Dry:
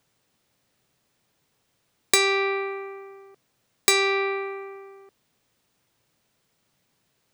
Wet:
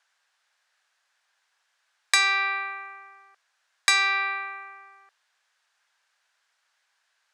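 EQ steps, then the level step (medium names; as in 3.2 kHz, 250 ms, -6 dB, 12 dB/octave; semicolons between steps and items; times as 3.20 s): high-pass 770 Hz 24 dB/octave; low-pass 7.4 kHz 12 dB/octave; peaking EQ 1.6 kHz +9 dB 0.4 oct; 0.0 dB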